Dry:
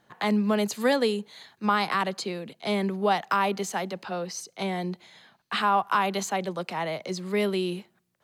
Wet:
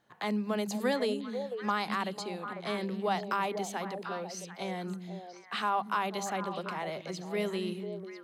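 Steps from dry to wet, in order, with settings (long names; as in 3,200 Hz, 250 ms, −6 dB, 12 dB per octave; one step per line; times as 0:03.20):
mains-hum notches 50/100/150/200 Hz
echo through a band-pass that steps 248 ms, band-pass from 210 Hz, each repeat 1.4 octaves, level −2 dB
level −7 dB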